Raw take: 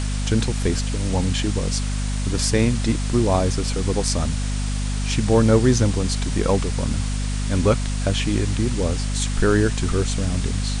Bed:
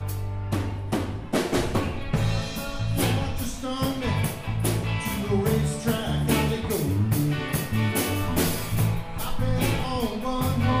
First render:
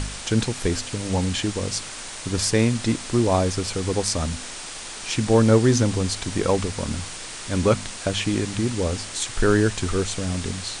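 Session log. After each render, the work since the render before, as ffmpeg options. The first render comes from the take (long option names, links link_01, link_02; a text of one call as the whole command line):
ffmpeg -i in.wav -af "bandreject=frequency=50:width_type=h:width=4,bandreject=frequency=100:width_type=h:width=4,bandreject=frequency=150:width_type=h:width=4,bandreject=frequency=200:width_type=h:width=4,bandreject=frequency=250:width_type=h:width=4" out.wav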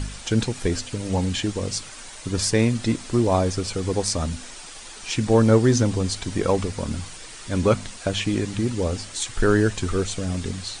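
ffmpeg -i in.wav -af "afftdn=noise_reduction=8:noise_floor=-36" out.wav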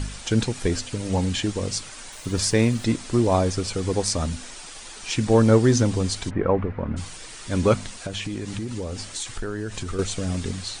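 ffmpeg -i in.wav -filter_complex "[0:a]asettb=1/sr,asplit=3[link_01][link_02][link_03];[link_01]atrim=end=2.124[link_04];[link_02]atrim=start=2.12:end=2.85,asetpts=PTS-STARTPTS,afade=type=in:duration=0.004:curve=qsin,afade=type=out:start_time=0.726:duration=0.004:curve=qsin,aeval=exprs='val(0)*gte(abs(val(0)),0.00596)':channel_layout=same[link_05];[link_03]atrim=start=2.846[link_06];[link_04][link_05]acrossfade=duration=0.004:curve1=hsin:curve2=qsin[link_07];[link_07][link_06]acrossfade=duration=0.004:curve1=qsin:curve2=hsin,asplit=3[link_08][link_09][link_10];[link_08]afade=type=out:start_time=6.29:duration=0.02[link_11];[link_09]lowpass=frequency=2000:width=0.5412,lowpass=frequency=2000:width=1.3066,afade=type=in:start_time=6.29:duration=0.02,afade=type=out:start_time=6.96:duration=0.02[link_12];[link_10]afade=type=in:start_time=6.96:duration=0.02[link_13];[link_11][link_12][link_13]amix=inputs=3:normalize=0,asettb=1/sr,asplit=3[link_14][link_15][link_16];[link_14]atrim=end=7.914[link_17];[link_15]atrim=start=7.91:end=9.99,asetpts=PTS-STARTPTS,afade=type=in:duration=0.004:curve=qsin,afade=type=out:start_time=2.076:duration=0.004:curve=qsin,acompressor=threshold=-26dB:ratio=6:attack=3.2:release=140:knee=1:detection=peak[link_18];[link_16]atrim=start=9.986[link_19];[link_17][link_18]acrossfade=duration=0.004:curve1=hsin:curve2=qsin[link_20];[link_20][link_19]acrossfade=duration=0.004:curve1=qsin:curve2=hsin" out.wav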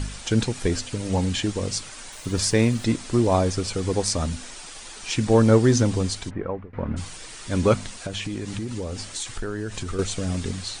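ffmpeg -i in.wav -filter_complex "[0:a]asplit=2[link_01][link_02];[link_01]atrim=end=6.73,asetpts=PTS-STARTPTS,afade=type=out:start_time=6:duration=0.73:silence=0.0891251[link_03];[link_02]atrim=start=6.73,asetpts=PTS-STARTPTS,afade=type=in:duration=0.004:curve=hsin:silence=0.0891251[link_04];[link_03][link_04]concat=n=2:v=0:a=1" out.wav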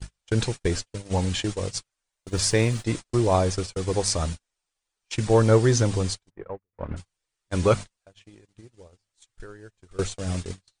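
ffmpeg -i in.wav -af "agate=range=-44dB:threshold=-26dB:ratio=16:detection=peak,equalizer=frequency=240:width_type=o:width=0.48:gain=-9" out.wav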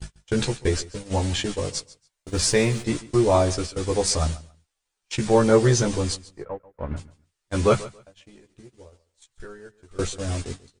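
ffmpeg -i in.wav -filter_complex "[0:a]asplit=2[link_01][link_02];[link_02]adelay=14,volume=-2dB[link_03];[link_01][link_03]amix=inputs=2:normalize=0,aecho=1:1:140|280:0.112|0.0213" out.wav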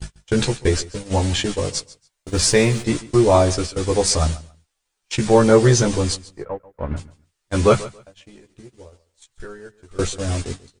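ffmpeg -i in.wav -af "volume=4.5dB,alimiter=limit=-2dB:level=0:latency=1" out.wav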